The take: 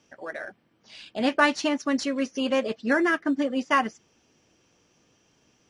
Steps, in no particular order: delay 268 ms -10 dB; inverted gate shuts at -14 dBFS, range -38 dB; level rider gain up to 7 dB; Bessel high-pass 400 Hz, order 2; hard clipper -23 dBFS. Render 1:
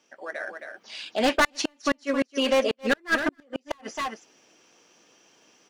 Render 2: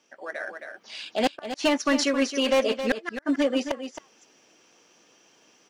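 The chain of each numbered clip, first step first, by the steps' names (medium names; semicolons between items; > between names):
Bessel high-pass > hard clipper > delay > level rider > inverted gate; Bessel high-pass > inverted gate > hard clipper > delay > level rider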